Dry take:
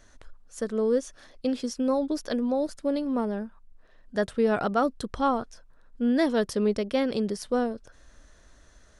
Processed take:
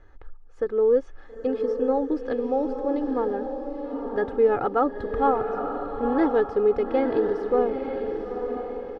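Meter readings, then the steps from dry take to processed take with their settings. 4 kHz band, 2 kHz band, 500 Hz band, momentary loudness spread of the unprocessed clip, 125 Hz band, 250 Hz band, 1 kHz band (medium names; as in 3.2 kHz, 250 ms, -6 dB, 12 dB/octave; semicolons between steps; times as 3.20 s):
under -10 dB, -0.5 dB, +5.5 dB, 10 LU, -3.5 dB, -0.5 dB, +4.5 dB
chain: de-esser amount 80%; low-pass 1.5 kHz 12 dB/octave; comb 2.4 ms, depth 74%; on a send: echo that smears into a reverb 916 ms, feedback 42%, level -5.5 dB; on the sum: trim +1.5 dB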